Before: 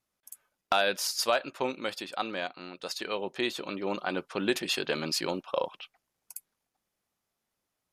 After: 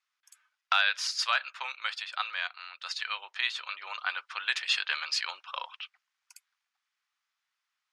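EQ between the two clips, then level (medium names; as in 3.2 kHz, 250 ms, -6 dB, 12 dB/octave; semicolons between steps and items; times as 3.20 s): high-pass 1.2 kHz 24 dB/octave; distance through air 120 m; +6.0 dB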